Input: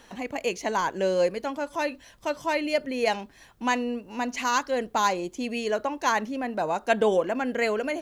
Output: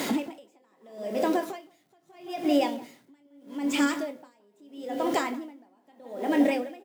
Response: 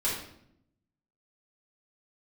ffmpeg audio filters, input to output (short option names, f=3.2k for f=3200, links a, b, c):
-filter_complex "[0:a]aeval=exprs='val(0)+0.5*0.0158*sgn(val(0))':c=same,asplit=2[a][b];[b]adelay=29,volume=-9dB[c];[a][c]amix=inputs=2:normalize=0,asplit=2[d][e];[1:a]atrim=start_sample=2205,atrim=end_sample=6174[f];[e][f]afir=irnorm=-1:irlink=0,volume=-17.5dB[g];[d][g]amix=inputs=2:normalize=0,acompressor=threshold=-32dB:ratio=8,highpass=f=120:w=0.5412,highpass=f=120:w=1.3066,equalizer=f=220:t=o:w=2:g=9.5,bandreject=f=1k:w=5.7,asplit=2[h][i];[i]adelay=197,lowpass=f=1.5k:p=1,volume=-8dB,asplit=2[j][k];[k]adelay=197,lowpass=f=1.5k:p=1,volume=0.43,asplit=2[l][m];[m]adelay=197,lowpass=f=1.5k:p=1,volume=0.43,asplit=2[n][o];[o]adelay=197,lowpass=f=1.5k:p=1,volume=0.43,asplit=2[p][q];[q]adelay=197,lowpass=f=1.5k:p=1,volume=0.43[r];[h][j][l][n][p][r]amix=inputs=6:normalize=0,asetrate=51597,aresample=44100,acrusher=bits=8:mix=0:aa=0.000001,aeval=exprs='val(0)*pow(10,-39*(0.5-0.5*cos(2*PI*0.78*n/s))/20)':c=same,volume=6.5dB"